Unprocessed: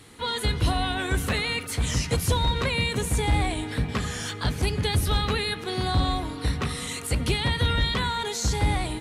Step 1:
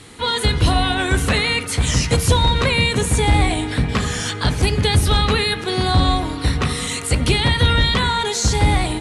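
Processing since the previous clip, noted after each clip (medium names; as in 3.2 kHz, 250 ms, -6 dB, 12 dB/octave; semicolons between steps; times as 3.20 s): steep low-pass 11 kHz 36 dB/octave; de-hum 57.43 Hz, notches 38; trim +8.5 dB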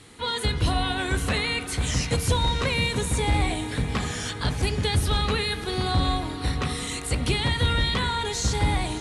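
echo that smears into a reverb 615 ms, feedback 48%, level -14 dB; trim -7.5 dB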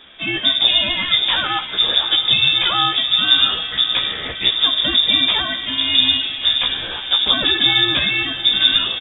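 frequency inversion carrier 3.6 kHz; doubling 15 ms -5 dB; trim +5 dB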